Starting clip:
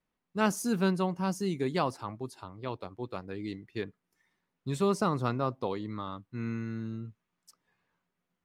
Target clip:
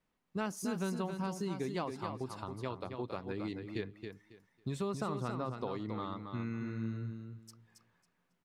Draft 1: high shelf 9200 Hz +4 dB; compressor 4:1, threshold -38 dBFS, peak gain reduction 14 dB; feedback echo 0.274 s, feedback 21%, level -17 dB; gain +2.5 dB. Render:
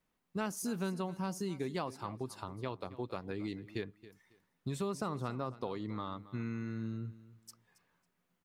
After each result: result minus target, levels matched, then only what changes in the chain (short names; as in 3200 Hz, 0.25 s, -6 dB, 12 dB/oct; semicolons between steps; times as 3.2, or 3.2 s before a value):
echo-to-direct -10.5 dB; 8000 Hz band +3.0 dB
change: feedback echo 0.274 s, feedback 21%, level -6.5 dB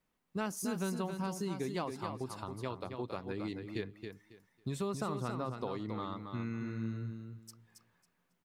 8000 Hz band +3.0 dB
change: high shelf 9200 Hz -5 dB